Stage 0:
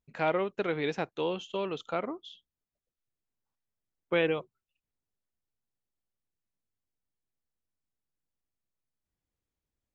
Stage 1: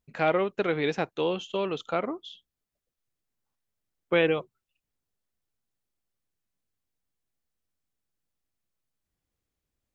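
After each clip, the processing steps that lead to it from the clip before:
notch filter 940 Hz, Q 24
level +4 dB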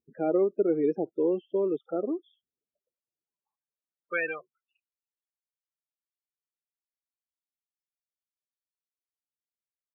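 spectral peaks only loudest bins 16
band-pass filter sweep 350 Hz → 4,700 Hz, 0:02.20–0:05.75
level +6 dB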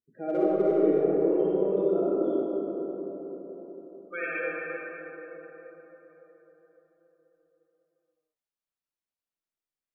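hard clipping −17.5 dBFS, distortion −29 dB
convolution reverb RT60 4.7 s, pre-delay 15 ms, DRR −9 dB
level −7.5 dB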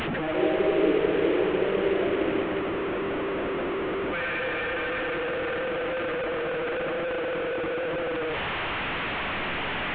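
linear delta modulator 16 kbit/s, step −22.5 dBFS

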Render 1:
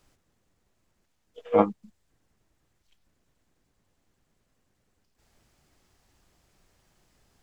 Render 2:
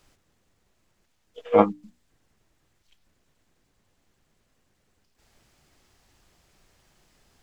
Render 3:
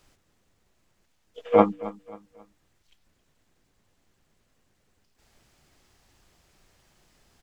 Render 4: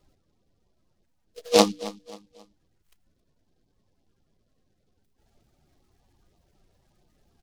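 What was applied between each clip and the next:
parametric band 3,100 Hz +2.5 dB 2.1 octaves; mains-hum notches 60/120/180/240/300 Hz; level +3 dB
repeating echo 269 ms, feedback 36%, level −18 dB
spectral peaks only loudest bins 32; short delay modulated by noise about 4,000 Hz, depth 0.1 ms

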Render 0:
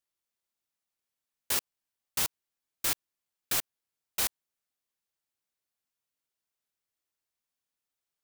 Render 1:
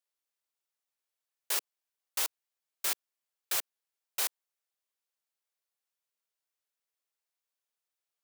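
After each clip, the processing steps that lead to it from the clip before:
high-pass filter 380 Hz 24 dB per octave
level −2 dB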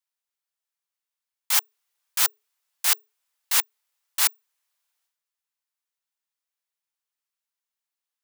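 leveller curve on the samples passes 3
transient designer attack −7 dB, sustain +11 dB
frequency shifter +420 Hz
level +6 dB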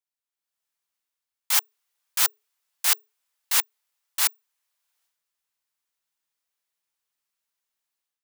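automatic gain control gain up to 11 dB
level −6.5 dB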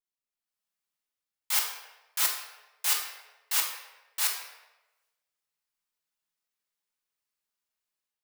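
rectangular room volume 570 cubic metres, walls mixed, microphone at 1.4 metres
level −6.5 dB

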